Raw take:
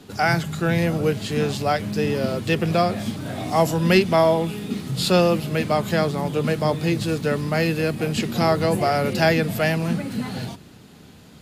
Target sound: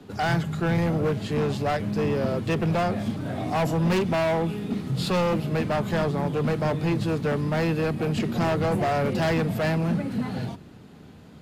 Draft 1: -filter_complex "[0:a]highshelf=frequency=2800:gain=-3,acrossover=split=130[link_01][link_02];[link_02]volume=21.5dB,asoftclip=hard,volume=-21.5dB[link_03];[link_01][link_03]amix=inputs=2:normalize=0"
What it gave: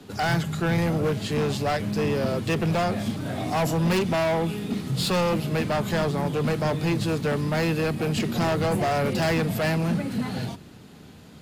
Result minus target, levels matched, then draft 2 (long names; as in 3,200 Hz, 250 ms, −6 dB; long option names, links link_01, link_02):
4,000 Hz band +3.5 dB
-filter_complex "[0:a]highshelf=frequency=2800:gain=-11.5,acrossover=split=130[link_01][link_02];[link_02]volume=21.5dB,asoftclip=hard,volume=-21.5dB[link_03];[link_01][link_03]amix=inputs=2:normalize=0"